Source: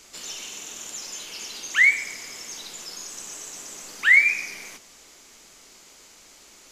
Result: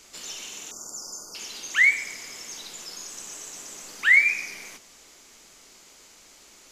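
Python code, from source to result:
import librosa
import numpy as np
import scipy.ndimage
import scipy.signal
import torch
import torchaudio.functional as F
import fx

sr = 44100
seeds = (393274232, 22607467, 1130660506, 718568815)

y = fx.brickwall_bandstop(x, sr, low_hz=1500.0, high_hz=4500.0, at=(0.71, 1.35))
y = F.gain(torch.from_numpy(y), -1.5).numpy()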